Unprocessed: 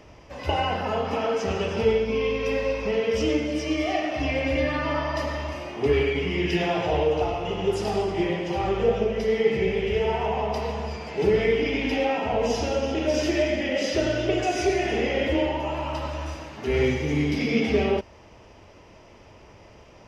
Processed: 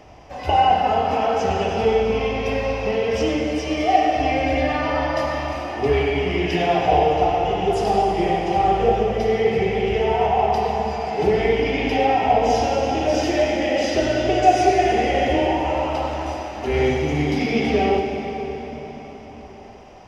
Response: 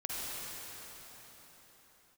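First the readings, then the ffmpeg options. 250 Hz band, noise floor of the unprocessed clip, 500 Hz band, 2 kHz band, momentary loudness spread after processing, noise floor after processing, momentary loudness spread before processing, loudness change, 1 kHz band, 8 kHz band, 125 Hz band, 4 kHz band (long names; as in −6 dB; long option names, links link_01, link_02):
+3.0 dB, −50 dBFS, +4.0 dB, +3.0 dB, 9 LU, −39 dBFS, 6 LU, +5.0 dB, +11.5 dB, can't be measured, +3.0 dB, +3.0 dB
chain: -filter_complex "[0:a]equalizer=frequency=750:width_type=o:width=0.22:gain=13,asplit=2[link_01][link_02];[1:a]atrim=start_sample=2205[link_03];[link_02][link_03]afir=irnorm=-1:irlink=0,volume=-5.5dB[link_04];[link_01][link_04]amix=inputs=2:normalize=0,volume=-1dB"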